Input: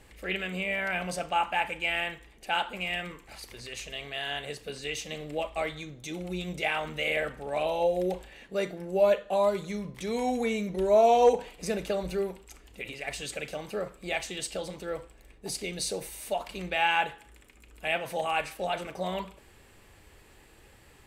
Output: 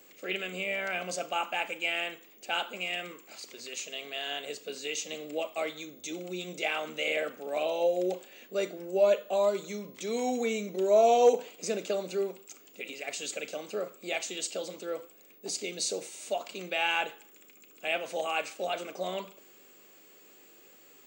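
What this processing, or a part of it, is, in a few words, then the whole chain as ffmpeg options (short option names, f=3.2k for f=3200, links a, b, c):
old television with a line whistle: -af "highpass=f=230:w=0.5412,highpass=f=230:w=1.3066,equalizer=f=900:t=q:w=4:g=-8,equalizer=f=1.8k:t=q:w=4:g=-7,equalizer=f=7k:t=q:w=4:g=9,lowpass=f=8k:w=0.5412,lowpass=f=8k:w=1.3066,aeval=exprs='val(0)+0.00158*sin(2*PI*15625*n/s)':c=same"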